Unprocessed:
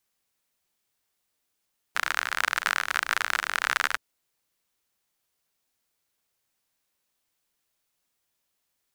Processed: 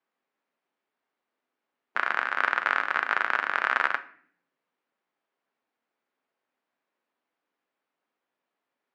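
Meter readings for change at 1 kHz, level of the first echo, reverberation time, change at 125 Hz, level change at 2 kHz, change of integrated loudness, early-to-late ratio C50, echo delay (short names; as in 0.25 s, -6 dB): +3.0 dB, none, 0.60 s, n/a, +1.0 dB, +0.5 dB, 15.5 dB, none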